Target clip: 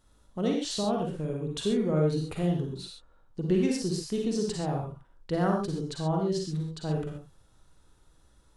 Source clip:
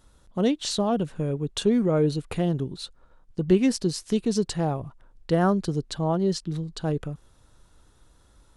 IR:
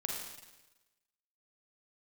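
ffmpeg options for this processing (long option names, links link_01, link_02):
-filter_complex "[1:a]atrim=start_sample=2205,atrim=end_sample=6174,asetrate=41454,aresample=44100[link_01];[0:a][link_01]afir=irnorm=-1:irlink=0,volume=-6dB"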